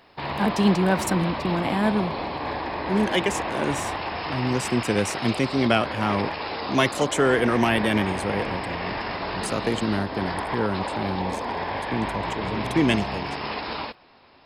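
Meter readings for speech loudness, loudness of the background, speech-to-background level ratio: -25.5 LUFS, -29.5 LUFS, 4.0 dB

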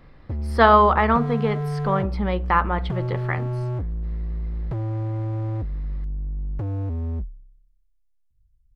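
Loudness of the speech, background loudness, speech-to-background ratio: -21.0 LUFS, -28.5 LUFS, 7.5 dB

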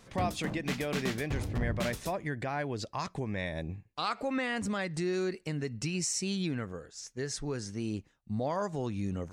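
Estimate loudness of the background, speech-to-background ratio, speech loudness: -37.0 LUFS, 2.0 dB, -35.0 LUFS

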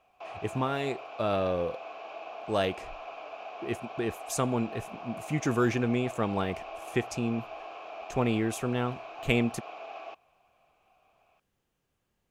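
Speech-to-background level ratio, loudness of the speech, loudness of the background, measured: 11.5 dB, -31.0 LUFS, -42.5 LUFS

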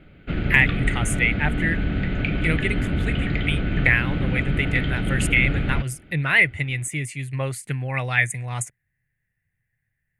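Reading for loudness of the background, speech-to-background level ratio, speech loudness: -25.0 LUFS, 1.5 dB, -23.5 LUFS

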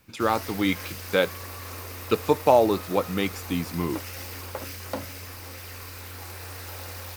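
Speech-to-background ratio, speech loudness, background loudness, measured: 11.5 dB, -25.5 LUFS, -37.0 LUFS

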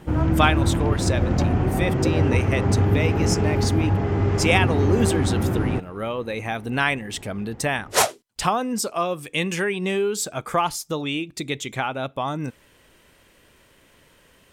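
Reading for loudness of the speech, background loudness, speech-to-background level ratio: -25.5 LUFS, -22.0 LUFS, -3.5 dB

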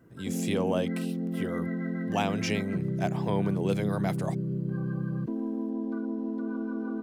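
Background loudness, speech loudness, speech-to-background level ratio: -32.5 LUFS, -32.5 LUFS, 0.0 dB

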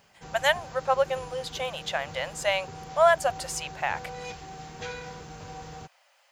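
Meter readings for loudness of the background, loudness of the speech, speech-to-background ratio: -42.0 LUFS, -27.5 LUFS, 14.5 dB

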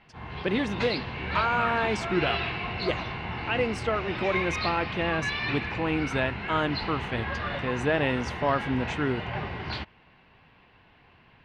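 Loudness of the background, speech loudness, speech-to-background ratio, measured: -32.0 LUFS, -29.5 LUFS, 2.5 dB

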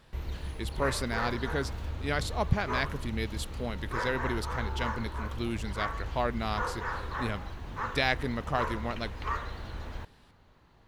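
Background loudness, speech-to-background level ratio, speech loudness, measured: -37.0 LUFS, 3.0 dB, -34.0 LUFS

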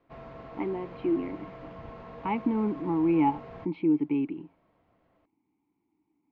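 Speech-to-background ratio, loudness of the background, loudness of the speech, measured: 16.5 dB, -45.5 LUFS, -29.0 LUFS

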